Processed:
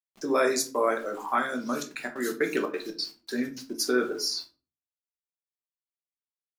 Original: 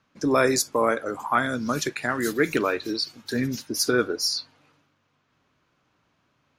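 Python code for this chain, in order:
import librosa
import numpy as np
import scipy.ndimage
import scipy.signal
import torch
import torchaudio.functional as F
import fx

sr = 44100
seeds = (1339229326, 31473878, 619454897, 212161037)

y = scipy.signal.sosfilt(scipy.signal.butter(4, 200.0, 'highpass', fs=sr, output='sos'), x)
y = np.where(np.abs(y) >= 10.0 ** (-45.0 / 20.0), y, 0.0)
y = fx.step_gate(y, sr, bpm=181, pattern='xx.xx.xx.x', floor_db=-24.0, edge_ms=4.5, at=(1.64, 3.78), fade=0.02)
y = fx.room_shoebox(y, sr, seeds[0], volume_m3=190.0, walls='furnished', distance_m=1.1)
y = y * 10.0 ** (-5.5 / 20.0)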